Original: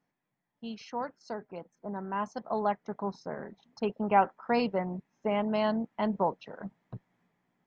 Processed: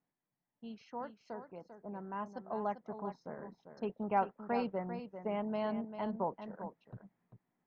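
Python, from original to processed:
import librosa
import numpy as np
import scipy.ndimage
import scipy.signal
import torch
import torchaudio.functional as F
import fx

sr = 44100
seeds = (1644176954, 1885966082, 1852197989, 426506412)

y = fx.high_shelf(x, sr, hz=2900.0, db=-10.5)
y = y + 10.0 ** (-10.0 / 20.0) * np.pad(y, (int(395 * sr / 1000.0), 0))[:len(y)]
y = y * librosa.db_to_amplitude(-7.0)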